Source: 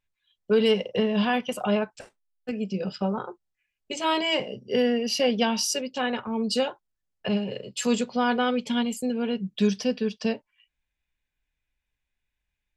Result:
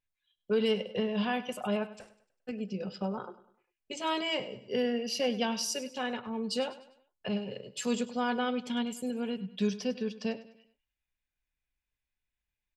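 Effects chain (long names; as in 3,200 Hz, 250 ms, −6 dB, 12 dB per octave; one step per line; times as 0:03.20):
repeating echo 100 ms, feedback 41%, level −16 dB
level −7 dB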